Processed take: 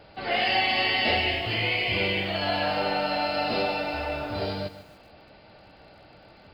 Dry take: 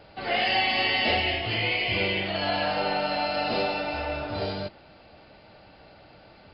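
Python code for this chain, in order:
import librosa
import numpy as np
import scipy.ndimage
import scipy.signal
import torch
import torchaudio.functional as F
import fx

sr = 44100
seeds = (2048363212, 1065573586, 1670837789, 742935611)

y = fx.echo_crushed(x, sr, ms=144, feedback_pct=35, bits=8, wet_db=-13.5)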